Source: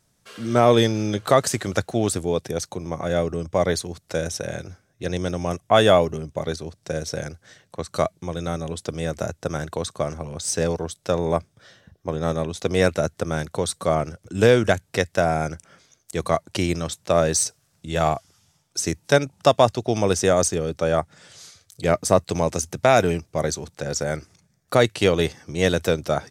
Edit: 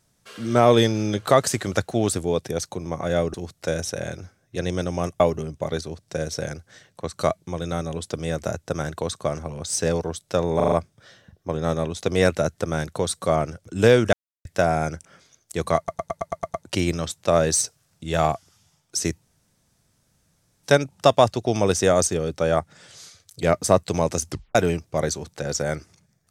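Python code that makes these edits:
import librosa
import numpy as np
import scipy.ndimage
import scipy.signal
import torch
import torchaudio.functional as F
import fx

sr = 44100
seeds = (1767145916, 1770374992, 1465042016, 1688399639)

y = fx.edit(x, sr, fx.cut(start_s=3.34, length_s=0.47),
    fx.cut(start_s=5.67, length_s=0.28),
    fx.stutter(start_s=11.31, slice_s=0.04, count=5),
    fx.silence(start_s=14.72, length_s=0.32),
    fx.stutter(start_s=16.36, slice_s=0.11, count=8),
    fx.insert_room_tone(at_s=19.04, length_s=1.41),
    fx.tape_stop(start_s=22.7, length_s=0.26), tone=tone)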